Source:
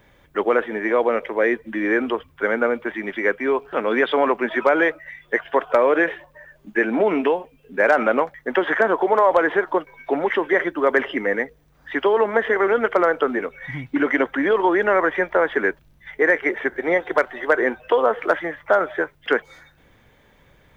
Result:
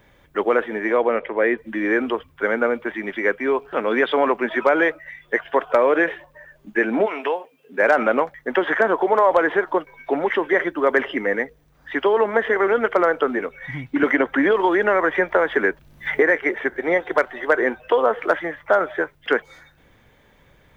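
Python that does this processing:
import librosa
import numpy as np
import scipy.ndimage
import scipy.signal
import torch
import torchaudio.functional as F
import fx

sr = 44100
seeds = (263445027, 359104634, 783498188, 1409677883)

y = fx.lowpass(x, sr, hz=3500.0, slope=24, at=(0.97, 1.58))
y = fx.highpass(y, sr, hz=fx.line((7.05, 820.0), (7.81, 210.0)), slope=12, at=(7.05, 7.81), fade=0.02)
y = fx.band_squash(y, sr, depth_pct=100, at=(14.03, 16.31))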